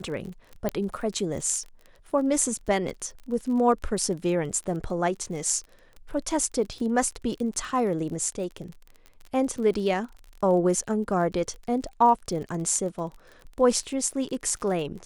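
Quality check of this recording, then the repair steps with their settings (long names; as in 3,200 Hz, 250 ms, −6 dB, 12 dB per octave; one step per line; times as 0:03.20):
surface crackle 35 per second −35 dBFS
0:00.69: click −13 dBFS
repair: click removal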